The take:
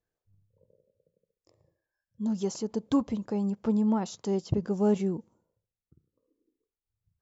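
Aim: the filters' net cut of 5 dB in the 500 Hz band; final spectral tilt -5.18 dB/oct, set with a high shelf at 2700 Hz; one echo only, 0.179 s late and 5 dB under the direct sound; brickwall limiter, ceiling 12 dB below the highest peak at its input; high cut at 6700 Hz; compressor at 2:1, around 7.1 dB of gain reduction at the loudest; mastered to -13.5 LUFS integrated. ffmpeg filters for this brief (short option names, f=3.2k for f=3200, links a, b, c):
-af "lowpass=6.7k,equalizer=f=500:t=o:g=-7,highshelf=f=2.7k:g=6.5,acompressor=threshold=-34dB:ratio=2,alimiter=level_in=8dB:limit=-24dB:level=0:latency=1,volume=-8dB,aecho=1:1:179:0.562,volume=26dB"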